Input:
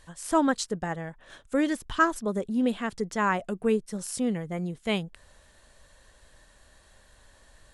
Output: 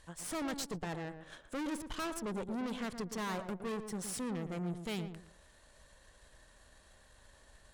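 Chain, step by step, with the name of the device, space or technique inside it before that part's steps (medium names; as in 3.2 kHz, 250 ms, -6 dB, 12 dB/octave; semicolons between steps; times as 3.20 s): rockabilly slapback (valve stage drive 36 dB, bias 0.75; tape echo 116 ms, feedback 30%, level -6 dB, low-pass 1.1 kHz)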